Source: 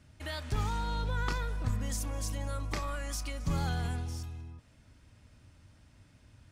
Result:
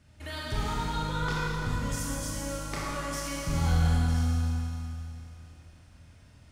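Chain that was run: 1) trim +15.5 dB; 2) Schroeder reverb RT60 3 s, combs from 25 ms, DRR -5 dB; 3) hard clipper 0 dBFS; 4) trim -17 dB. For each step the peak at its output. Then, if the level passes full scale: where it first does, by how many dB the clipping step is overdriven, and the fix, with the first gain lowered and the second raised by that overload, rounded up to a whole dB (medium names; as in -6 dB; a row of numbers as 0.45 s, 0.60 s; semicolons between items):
-2.5 dBFS, +3.0 dBFS, 0.0 dBFS, -17.0 dBFS; step 2, 3.0 dB; step 1 +12.5 dB, step 4 -14 dB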